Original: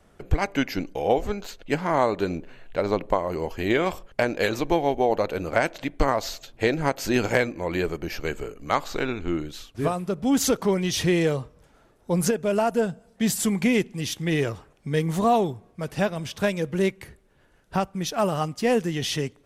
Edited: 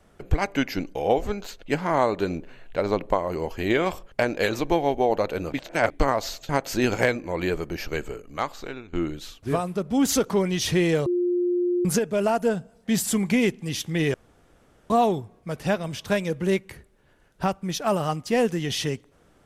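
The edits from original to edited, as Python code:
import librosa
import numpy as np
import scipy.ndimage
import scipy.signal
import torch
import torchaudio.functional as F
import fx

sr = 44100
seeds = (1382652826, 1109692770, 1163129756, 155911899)

y = fx.edit(x, sr, fx.reverse_span(start_s=5.52, length_s=0.38),
    fx.cut(start_s=6.49, length_s=0.32),
    fx.fade_out_to(start_s=8.28, length_s=0.97, floor_db=-15.0),
    fx.bleep(start_s=11.38, length_s=0.79, hz=354.0, db=-20.0),
    fx.room_tone_fill(start_s=14.46, length_s=0.76), tone=tone)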